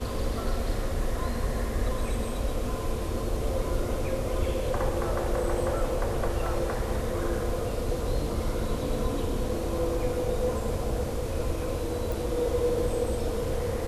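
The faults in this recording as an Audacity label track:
9.490000	9.490000	gap 3.9 ms
12.120000	12.120000	pop

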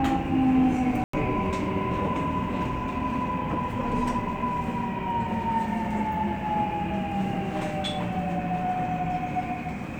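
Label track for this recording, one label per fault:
1.040000	1.130000	gap 94 ms

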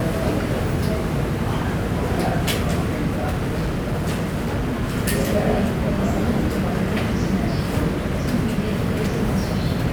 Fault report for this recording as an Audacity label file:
3.080000	4.840000	clipped -18.5 dBFS

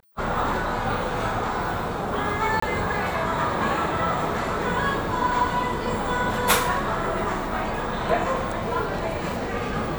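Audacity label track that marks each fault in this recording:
2.600000	2.620000	gap 24 ms

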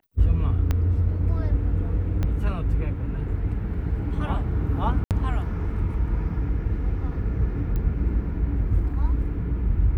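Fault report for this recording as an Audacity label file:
0.710000	0.710000	pop -12 dBFS
2.230000	2.230000	pop -15 dBFS
5.040000	5.110000	gap 68 ms
7.760000	7.760000	pop -18 dBFS

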